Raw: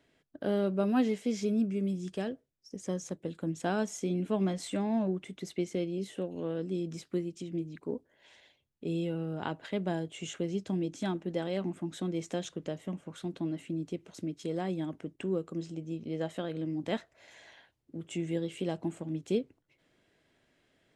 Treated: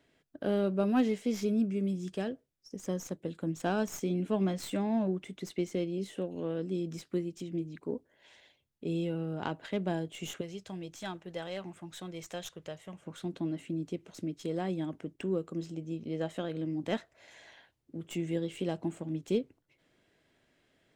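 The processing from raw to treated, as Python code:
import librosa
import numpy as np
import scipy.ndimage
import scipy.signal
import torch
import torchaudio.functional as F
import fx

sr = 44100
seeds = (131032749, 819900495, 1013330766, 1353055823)

y = fx.tracing_dist(x, sr, depth_ms=0.037)
y = fx.peak_eq(y, sr, hz=260.0, db=-14.5, octaves=1.4, at=(10.41, 13.02))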